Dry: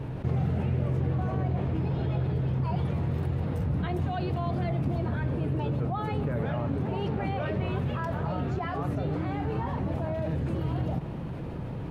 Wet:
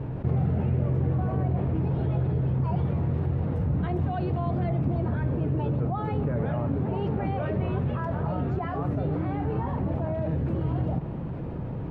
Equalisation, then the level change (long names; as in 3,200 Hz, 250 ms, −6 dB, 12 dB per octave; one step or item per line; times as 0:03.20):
low-pass filter 1,200 Hz 6 dB per octave
+2.5 dB